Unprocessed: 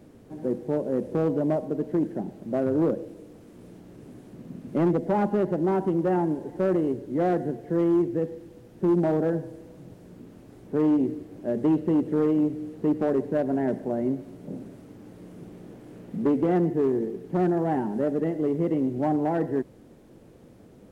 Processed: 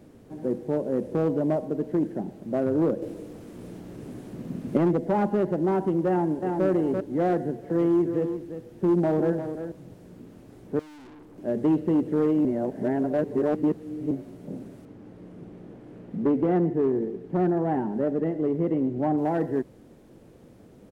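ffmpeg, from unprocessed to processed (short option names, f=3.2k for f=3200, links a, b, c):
-filter_complex "[0:a]asplit=2[a][b];[b]afade=t=in:st=6.08:d=0.01,afade=t=out:st=6.66:d=0.01,aecho=0:1:340|680|1020:0.630957|0.157739|0.0394348[c];[a][c]amix=inputs=2:normalize=0,asettb=1/sr,asplit=3[d][e][f];[d]atrim=end=7.354[g];[e]atrim=start=7.35:end=9.72,asetpts=PTS-STARTPTS,afade=t=in:d=0.004:c=qsin,afade=t=out:st=2.366:d=0.004:c=qsin,aecho=1:1:348:0.335,atrim=end_sample=104517[h];[f]atrim=start=9.716[i];[g][h]acrossfade=d=0.004:c1=hsin:c2=qsin[j];[j][i]acrossfade=d=0.004:c1=qsin:c2=hsin,asettb=1/sr,asplit=3[k][l][m];[k]atrim=end=10.794[n];[l]atrim=start=10.79:end=11.38,asetpts=PTS-STARTPTS,afade=t=in:d=0.004:c=qsin,afade=t=out:st=0.586:d=0.004:c=qsin,aeval=exprs='(tanh(200*val(0)+0.2)-tanh(0.2))/200':c=same[o];[m]atrim=start=11.376[p];[n][o]acrossfade=d=0.004:c1=hsin:c2=qsin[q];[q][p]acrossfade=d=0.004:c1=qsin:c2=hsin,asettb=1/sr,asplit=3[r][s][t];[r]atrim=end=14.854[u];[s]atrim=start=14.85:end=19.18,asetpts=PTS-STARTPTS,afade=t=in:d=0.004:c=qsin,afade=t=out:st=4.326:d=0.004:c=qsin,lowpass=f=2.4k:p=1[v];[t]atrim=start=19.176[w];[u][v]acrossfade=d=0.004:c1=hsin:c2=qsin[x];[x][w]acrossfade=d=0.004:c1=qsin:c2=hsin,asplit=5[y][z][aa][ab][ac];[y]atrim=end=3.022[ad];[z]atrim=start=3.018:end=4.772,asetpts=PTS-STARTPTS,volume=6dB[ae];[aa]atrim=start=4.768:end=12.452[af];[ab]atrim=start=12.448:end=14.112,asetpts=PTS-STARTPTS,areverse[ag];[ac]atrim=start=14.108[ah];[ad][ae]acrossfade=d=0.004:c1=hsin:c2=hsin[ai];[ai][af]acrossfade=d=0.004:c1=hsin:c2=hsin[aj];[aj][ag]acrossfade=d=0.004:c1=hsin:c2=hsin[ak];[ak][ah]acrossfade=d=0.004:c1=hsin:c2=hsin"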